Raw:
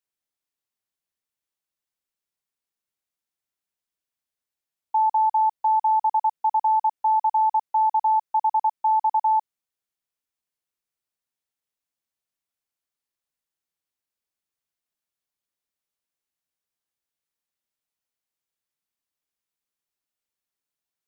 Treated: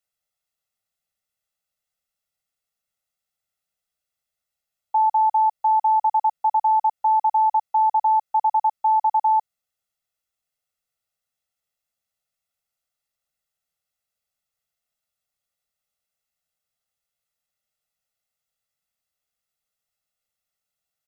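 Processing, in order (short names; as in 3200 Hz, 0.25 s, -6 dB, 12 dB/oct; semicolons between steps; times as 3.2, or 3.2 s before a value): comb 1.5 ms, depth 80%; gain +1.5 dB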